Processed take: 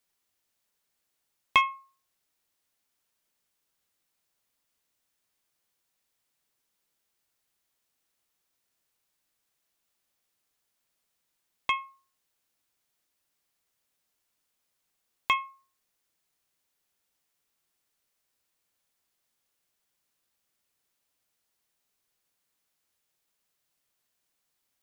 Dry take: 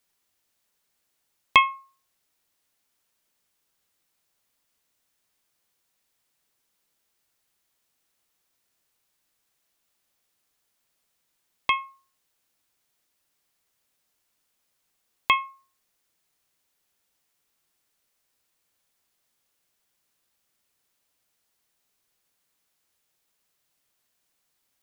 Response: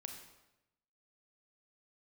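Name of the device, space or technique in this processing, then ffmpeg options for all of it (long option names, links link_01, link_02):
parallel distortion: -filter_complex "[0:a]asplit=2[link_01][link_02];[link_02]asoftclip=type=hard:threshold=-16dB,volume=-10dB[link_03];[link_01][link_03]amix=inputs=2:normalize=0,volume=-6.5dB"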